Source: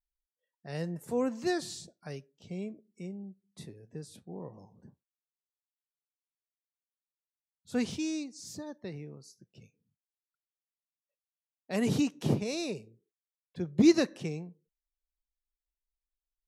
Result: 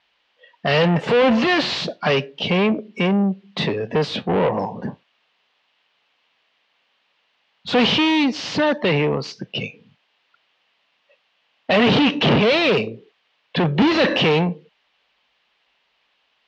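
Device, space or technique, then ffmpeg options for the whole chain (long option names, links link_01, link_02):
overdrive pedal into a guitar cabinet: -filter_complex "[0:a]asettb=1/sr,asplit=3[link_01][link_02][link_03];[link_01]atrim=end=11.824[link_04];[link_02]atrim=start=11.82:end=12.69,asetpts=PTS-STARTPTS,afade=type=in:duration=0.004:curve=qsin,afade=type=out:start_time=0.866:duration=0.004:curve=qsin,lowpass=6000[link_05];[link_03]atrim=start=12.686[link_06];[link_04][link_05]acrossfade=duration=0.004:curve1=hsin:curve2=qsin[link_07];[link_07][link_06]acrossfade=duration=0.004:curve1=qsin:curve2=hsin,asplit=2[link_08][link_09];[link_09]highpass=frequency=720:poles=1,volume=41dB,asoftclip=type=tanh:threshold=-11.5dB[link_10];[link_08][link_10]amix=inputs=2:normalize=0,lowpass=frequency=2700:poles=1,volume=-6dB,highpass=93,equalizer=frequency=350:width_type=q:width=4:gain=-6,equalizer=frequency=1400:width_type=q:width=4:gain=-4,equalizer=frequency=2900:width_type=q:width=4:gain=6,lowpass=frequency=4100:width=0.5412,lowpass=frequency=4100:width=1.3066,volume=4.5dB"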